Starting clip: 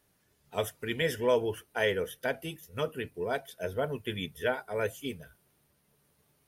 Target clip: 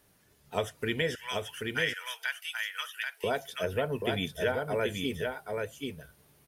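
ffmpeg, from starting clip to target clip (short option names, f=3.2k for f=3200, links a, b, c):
-filter_complex "[0:a]acrossover=split=8300[a][b];[b]acompressor=threshold=-58dB:ratio=4:attack=1:release=60[c];[a][c]amix=inputs=2:normalize=0,asettb=1/sr,asplit=3[d][e][f];[d]atrim=end=1.154[g];[e]atrim=start=1.15:end=3.24,asetpts=PTS-STARTPTS,afade=t=in:d=0.004:c=qsin,afade=t=out:st=2.086:d=0.004:c=qsin,highpass=f=1.4k:w=0.5412,highpass=f=1.4k:w=1.3066[h];[f]atrim=start=3.236[i];[g][h]acrossfade=d=0.004:c1=hsin:c2=qsin[j];[j][i]acrossfade=d=0.004:c1=qsin:c2=hsin,acompressor=threshold=-33dB:ratio=3,aecho=1:1:783:0.631,volume=5.5dB"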